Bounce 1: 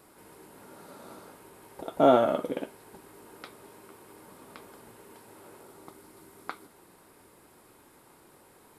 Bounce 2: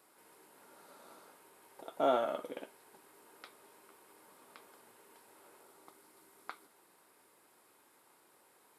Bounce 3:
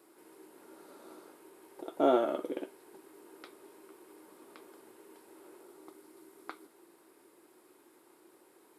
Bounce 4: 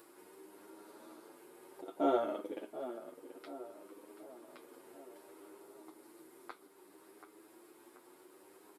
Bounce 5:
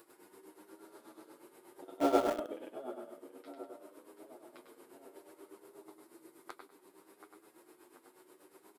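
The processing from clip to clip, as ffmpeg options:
-af "highpass=f=630:p=1,volume=-6.5dB"
-af "equalizer=f=340:w=2.1:g=15"
-filter_complex "[0:a]asplit=2[a][b];[b]adelay=733,lowpass=f=2k:p=1,volume=-11.5dB,asplit=2[c][d];[d]adelay=733,lowpass=f=2k:p=1,volume=0.5,asplit=2[e][f];[f]adelay=733,lowpass=f=2k:p=1,volume=0.5,asplit=2[g][h];[h]adelay=733,lowpass=f=2k:p=1,volume=0.5,asplit=2[i][j];[j]adelay=733,lowpass=f=2k:p=1,volume=0.5[k];[a][c][e][g][i][k]amix=inputs=6:normalize=0,asplit=2[l][m];[m]acompressor=mode=upward:threshold=-40dB:ratio=2.5,volume=-0.5dB[n];[l][n]amix=inputs=2:normalize=0,asplit=2[o][p];[p]adelay=8.5,afreqshift=0.62[q];[o][q]amix=inputs=2:normalize=1,volume=-7.5dB"
-filter_complex "[0:a]aecho=1:1:99|198|297|396:0.708|0.234|0.0771|0.0254,asplit=2[a][b];[b]acrusher=bits=4:mix=0:aa=0.000001,volume=-9dB[c];[a][c]amix=inputs=2:normalize=0,tremolo=f=8.3:d=0.67"

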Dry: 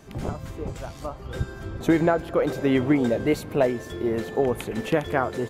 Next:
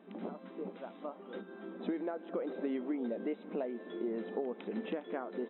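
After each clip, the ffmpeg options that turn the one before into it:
-af "acompressor=threshold=-27dB:ratio=6,afftfilt=real='re*between(b*sr/4096,180,4000)':imag='im*between(b*sr/4096,180,4000)':win_size=4096:overlap=0.75,tiltshelf=f=920:g=4.5,volume=-9dB"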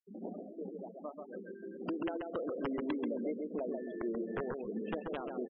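-af "aeval=exprs='(mod(22.4*val(0)+1,2)-1)/22.4':c=same,aecho=1:1:135|270|405|540|675:0.668|0.247|0.0915|0.0339|0.0125,afftfilt=real='re*gte(hypot(re,im),0.0158)':imag='im*gte(hypot(re,im),0.0158)':win_size=1024:overlap=0.75,volume=-1.5dB"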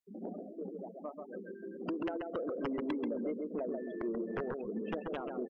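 -af "asoftclip=type=tanh:threshold=-26dB,volume=1dB"

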